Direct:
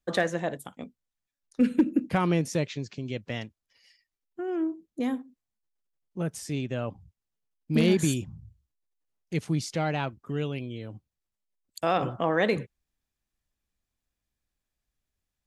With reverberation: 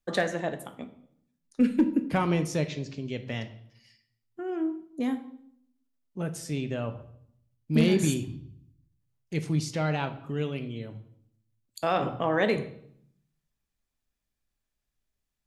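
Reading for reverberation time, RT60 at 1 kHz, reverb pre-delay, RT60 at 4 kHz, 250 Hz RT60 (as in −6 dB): 0.65 s, 0.65 s, 3 ms, 0.60 s, 0.90 s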